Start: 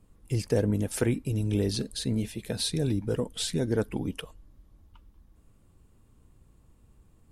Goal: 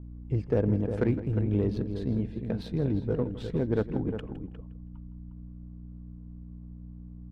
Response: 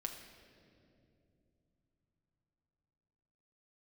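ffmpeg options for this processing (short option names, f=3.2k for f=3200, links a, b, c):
-filter_complex "[0:a]aeval=exprs='val(0)+0.00891*(sin(2*PI*60*n/s)+sin(2*PI*2*60*n/s)/2+sin(2*PI*3*60*n/s)/3+sin(2*PI*4*60*n/s)/4+sin(2*PI*5*60*n/s)/5)':c=same,asplit=2[a][b];[b]adelay=355.7,volume=-8dB,highshelf=f=4k:g=-8[c];[a][c]amix=inputs=2:normalize=0,adynamicsmooth=sensitivity=1:basefreq=1.1k,asplit=2[d][e];[e]aecho=0:1:162|324:0.168|0.0252[f];[d][f]amix=inputs=2:normalize=0"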